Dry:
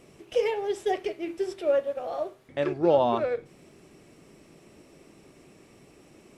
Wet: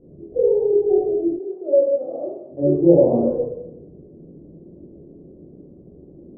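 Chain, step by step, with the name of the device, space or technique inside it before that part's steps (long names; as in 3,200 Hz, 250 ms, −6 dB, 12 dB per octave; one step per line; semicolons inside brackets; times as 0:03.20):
next room (low-pass filter 460 Hz 24 dB per octave; convolution reverb RT60 0.90 s, pre-delay 21 ms, DRR −6.5 dB)
0:01.38–0:02.62: high-pass filter 560 Hz → 140 Hz 12 dB per octave
level +4 dB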